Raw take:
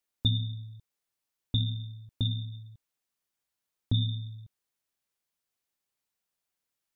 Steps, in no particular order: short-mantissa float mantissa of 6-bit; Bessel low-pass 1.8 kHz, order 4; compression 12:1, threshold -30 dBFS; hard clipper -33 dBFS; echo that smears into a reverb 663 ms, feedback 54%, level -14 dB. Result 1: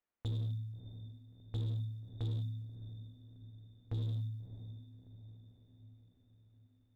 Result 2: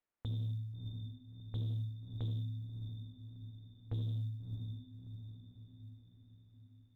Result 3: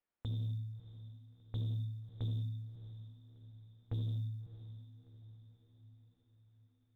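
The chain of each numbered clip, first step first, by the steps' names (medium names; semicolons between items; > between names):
Bessel low-pass > compression > short-mantissa float > echo that smears into a reverb > hard clipper; echo that smears into a reverb > compression > hard clipper > Bessel low-pass > short-mantissa float; compression > hard clipper > Bessel low-pass > short-mantissa float > echo that smears into a reverb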